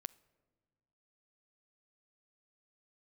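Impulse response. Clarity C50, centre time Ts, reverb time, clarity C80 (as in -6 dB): 21.5 dB, 2 ms, 1.5 s, 24.0 dB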